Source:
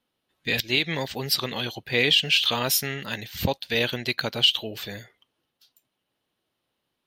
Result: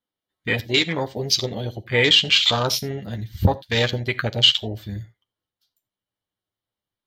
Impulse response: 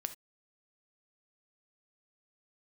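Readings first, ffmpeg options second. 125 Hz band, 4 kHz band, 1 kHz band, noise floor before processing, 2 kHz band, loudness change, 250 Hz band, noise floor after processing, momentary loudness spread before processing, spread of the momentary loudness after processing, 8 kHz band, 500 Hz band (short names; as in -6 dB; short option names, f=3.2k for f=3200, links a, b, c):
+8.5 dB, +4.0 dB, +4.5 dB, -80 dBFS, +2.5 dB, +4.0 dB, +4.0 dB, under -85 dBFS, 14 LU, 17 LU, +1.5 dB, +4.5 dB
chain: -filter_complex "[0:a]bandreject=f=2.6k:w=7.3,afwtdn=0.0398,asubboost=boost=2.5:cutoff=140,asplit=2[a][b];[1:a]atrim=start_sample=2205,adelay=10[c];[b][c]afir=irnorm=-1:irlink=0,volume=-5.5dB[d];[a][d]amix=inputs=2:normalize=0,volume=5dB"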